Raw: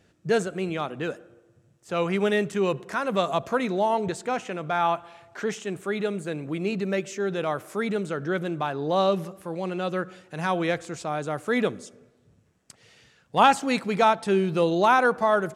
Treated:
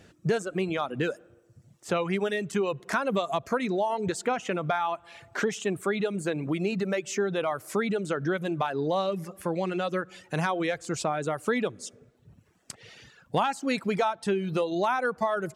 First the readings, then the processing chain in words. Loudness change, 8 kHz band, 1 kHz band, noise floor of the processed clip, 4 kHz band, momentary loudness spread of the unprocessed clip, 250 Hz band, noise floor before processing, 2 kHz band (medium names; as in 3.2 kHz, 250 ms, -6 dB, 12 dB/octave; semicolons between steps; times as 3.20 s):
-3.0 dB, +1.5 dB, -5.0 dB, -62 dBFS, -3.0 dB, 12 LU, -2.0 dB, -63 dBFS, -3.0 dB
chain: compression 6:1, threshold -31 dBFS, peak gain reduction 17.5 dB; reverb removal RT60 0.9 s; trim +7.5 dB